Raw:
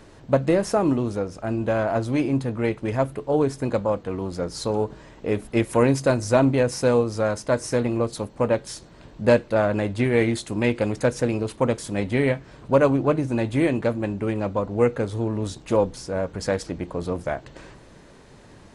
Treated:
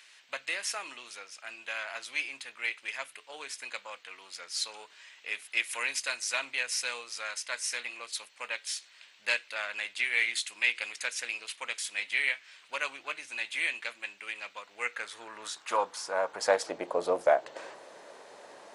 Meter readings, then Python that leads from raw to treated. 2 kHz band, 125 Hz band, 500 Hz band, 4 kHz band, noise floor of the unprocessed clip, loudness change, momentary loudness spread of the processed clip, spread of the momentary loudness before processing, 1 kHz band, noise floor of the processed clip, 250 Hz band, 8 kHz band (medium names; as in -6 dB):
+1.5 dB, under -40 dB, -14.0 dB, +3.0 dB, -48 dBFS, -9.0 dB, 16 LU, 9 LU, -7.5 dB, -59 dBFS, -29.5 dB, +0.5 dB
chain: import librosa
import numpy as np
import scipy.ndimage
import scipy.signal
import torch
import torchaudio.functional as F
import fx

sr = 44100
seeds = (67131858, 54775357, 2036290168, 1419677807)

y = fx.filter_sweep_highpass(x, sr, from_hz=2400.0, to_hz=600.0, start_s=14.65, end_s=16.82, q=1.8)